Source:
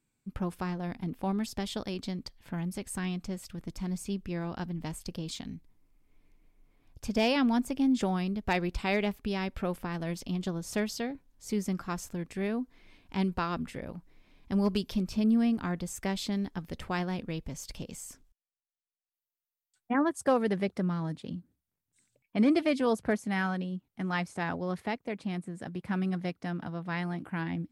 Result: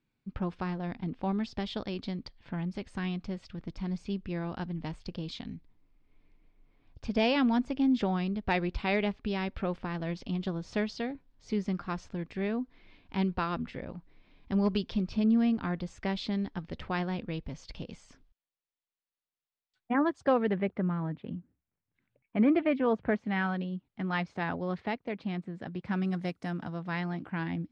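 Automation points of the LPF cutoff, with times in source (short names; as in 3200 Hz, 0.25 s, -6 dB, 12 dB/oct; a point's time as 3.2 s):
LPF 24 dB/oct
20.14 s 4600 Hz
20.7 s 2600 Hz
22.8 s 2600 Hz
23.68 s 4400 Hz
25.69 s 4400 Hz
26.38 s 11000 Hz
26.96 s 5600 Hz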